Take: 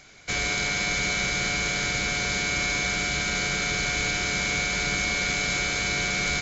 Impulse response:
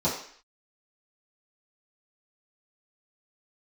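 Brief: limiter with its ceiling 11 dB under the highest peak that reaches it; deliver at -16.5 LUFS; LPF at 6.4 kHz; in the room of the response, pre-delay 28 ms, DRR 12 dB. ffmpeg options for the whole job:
-filter_complex "[0:a]lowpass=6400,alimiter=level_in=1.12:limit=0.0631:level=0:latency=1,volume=0.891,asplit=2[s0][s1];[1:a]atrim=start_sample=2205,adelay=28[s2];[s1][s2]afir=irnorm=-1:irlink=0,volume=0.0668[s3];[s0][s3]amix=inputs=2:normalize=0,volume=5.62"

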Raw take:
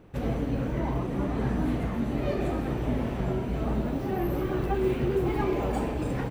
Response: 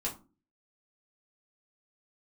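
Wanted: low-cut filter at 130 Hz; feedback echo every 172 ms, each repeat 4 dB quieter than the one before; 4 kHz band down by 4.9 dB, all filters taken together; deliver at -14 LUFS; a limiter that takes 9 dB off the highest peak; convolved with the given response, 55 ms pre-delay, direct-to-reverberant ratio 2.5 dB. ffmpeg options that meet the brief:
-filter_complex "[0:a]highpass=130,equalizer=f=4000:t=o:g=-7,alimiter=level_in=1.19:limit=0.0631:level=0:latency=1,volume=0.841,aecho=1:1:172|344|516|688|860|1032|1204|1376|1548:0.631|0.398|0.25|0.158|0.0994|0.0626|0.0394|0.0249|0.0157,asplit=2[s0][s1];[1:a]atrim=start_sample=2205,adelay=55[s2];[s1][s2]afir=irnorm=-1:irlink=0,volume=0.531[s3];[s0][s3]amix=inputs=2:normalize=0,volume=5.62"

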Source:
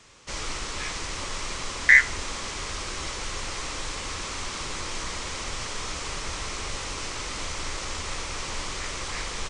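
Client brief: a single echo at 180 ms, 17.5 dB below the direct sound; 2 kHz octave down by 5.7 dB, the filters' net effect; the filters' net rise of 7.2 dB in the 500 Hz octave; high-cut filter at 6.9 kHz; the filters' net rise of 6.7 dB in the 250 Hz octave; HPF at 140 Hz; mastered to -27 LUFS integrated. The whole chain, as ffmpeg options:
-af "highpass=140,lowpass=6900,equalizer=f=250:t=o:g=7,equalizer=f=500:t=o:g=7,equalizer=f=2000:t=o:g=-6.5,aecho=1:1:180:0.133,volume=1.58"

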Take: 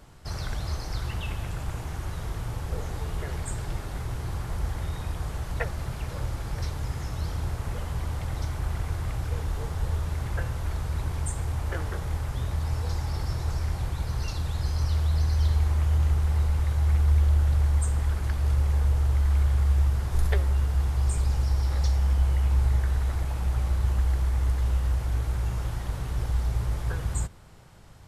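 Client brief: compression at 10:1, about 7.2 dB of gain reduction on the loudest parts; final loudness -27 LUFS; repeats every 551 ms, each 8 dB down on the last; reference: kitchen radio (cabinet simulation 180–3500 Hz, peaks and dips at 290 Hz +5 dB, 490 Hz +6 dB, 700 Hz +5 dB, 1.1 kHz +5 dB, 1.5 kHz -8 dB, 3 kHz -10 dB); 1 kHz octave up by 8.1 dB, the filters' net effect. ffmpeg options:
-af "equalizer=f=1000:t=o:g=6.5,acompressor=threshold=0.0562:ratio=10,highpass=180,equalizer=f=290:t=q:w=4:g=5,equalizer=f=490:t=q:w=4:g=6,equalizer=f=700:t=q:w=4:g=5,equalizer=f=1100:t=q:w=4:g=5,equalizer=f=1500:t=q:w=4:g=-8,equalizer=f=3000:t=q:w=4:g=-10,lowpass=f=3500:w=0.5412,lowpass=f=3500:w=1.3066,aecho=1:1:551|1102|1653|2204|2755:0.398|0.159|0.0637|0.0255|0.0102,volume=3.35"

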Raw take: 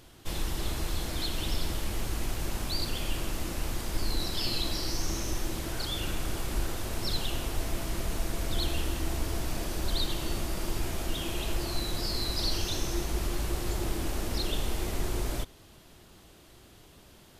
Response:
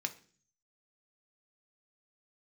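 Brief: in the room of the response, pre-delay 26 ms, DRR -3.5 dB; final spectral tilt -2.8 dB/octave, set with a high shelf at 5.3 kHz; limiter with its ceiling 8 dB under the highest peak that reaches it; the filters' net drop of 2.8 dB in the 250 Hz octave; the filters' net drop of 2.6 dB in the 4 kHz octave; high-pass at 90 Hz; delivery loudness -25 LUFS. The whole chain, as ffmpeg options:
-filter_complex "[0:a]highpass=90,equalizer=f=250:t=o:g=-4,equalizer=f=4000:t=o:g=-5,highshelf=f=5300:g=4.5,alimiter=level_in=1.88:limit=0.0631:level=0:latency=1,volume=0.531,asplit=2[s0][s1];[1:a]atrim=start_sample=2205,adelay=26[s2];[s1][s2]afir=irnorm=-1:irlink=0,volume=1.26[s3];[s0][s3]amix=inputs=2:normalize=0,volume=2.82"

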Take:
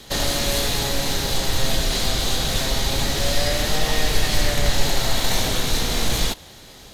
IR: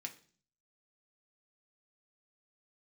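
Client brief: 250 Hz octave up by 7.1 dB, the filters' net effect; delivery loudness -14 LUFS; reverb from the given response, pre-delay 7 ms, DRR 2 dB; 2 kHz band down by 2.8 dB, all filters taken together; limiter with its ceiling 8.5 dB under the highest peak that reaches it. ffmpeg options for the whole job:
-filter_complex "[0:a]equalizer=f=250:t=o:g=9,equalizer=f=2000:t=o:g=-3.5,alimiter=limit=0.224:level=0:latency=1,asplit=2[s0][s1];[1:a]atrim=start_sample=2205,adelay=7[s2];[s1][s2]afir=irnorm=-1:irlink=0,volume=1.06[s3];[s0][s3]amix=inputs=2:normalize=0,volume=2.51"

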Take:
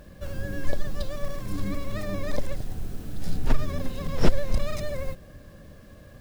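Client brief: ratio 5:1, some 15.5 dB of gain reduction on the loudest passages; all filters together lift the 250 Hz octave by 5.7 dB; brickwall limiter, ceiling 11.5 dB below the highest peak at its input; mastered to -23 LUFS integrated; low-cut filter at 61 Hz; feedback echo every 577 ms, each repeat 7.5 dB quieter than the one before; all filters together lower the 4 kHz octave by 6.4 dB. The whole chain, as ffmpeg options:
-af "highpass=61,equalizer=f=250:t=o:g=7.5,equalizer=f=4000:t=o:g=-8.5,acompressor=threshold=0.0251:ratio=5,alimiter=level_in=2.37:limit=0.0631:level=0:latency=1,volume=0.422,aecho=1:1:577|1154|1731|2308|2885:0.422|0.177|0.0744|0.0312|0.0131,volume=7.5"

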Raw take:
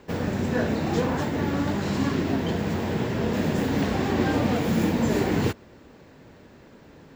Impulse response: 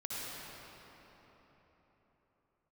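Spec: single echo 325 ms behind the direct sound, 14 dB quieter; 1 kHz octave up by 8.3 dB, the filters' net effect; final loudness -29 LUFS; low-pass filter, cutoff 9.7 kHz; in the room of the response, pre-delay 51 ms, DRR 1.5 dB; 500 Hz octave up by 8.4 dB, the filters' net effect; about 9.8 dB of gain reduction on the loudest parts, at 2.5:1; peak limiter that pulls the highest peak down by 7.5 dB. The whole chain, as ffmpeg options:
-filter_complex "[0:a]lowpass=9700,equalizer=f=500:t=o:g=8.5,equalizer=f=1000:t=o:g=7.5,acompressor=threshold=0.0355:ratio=2.5,alimiter=limit=0.0794:level=0:latency=1,aecho=1:1:325:0.2,asplit=2[s0][s1];[1:a]atrim=start_sample=2205,adelay=51[s2];[s1][s2]afir=irnorm=-1:irlink=0,volume=0.596[s3];[s0][s3]amix=inputs=2:normalize=0"

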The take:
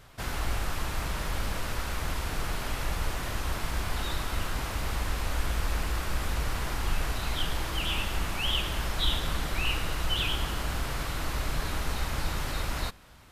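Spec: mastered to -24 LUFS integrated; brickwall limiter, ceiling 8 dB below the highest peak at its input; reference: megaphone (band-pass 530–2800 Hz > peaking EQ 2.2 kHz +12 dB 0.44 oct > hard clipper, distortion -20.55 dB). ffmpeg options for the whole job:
-af "alimiter=limit=0.0794:level=0:latency=1,highpass=530,lowpass=2800,equalizer=f=2200:t=o:w=0.44:g=12,asoftclip=type=hard:threshold=0.0355,volume=3.35"

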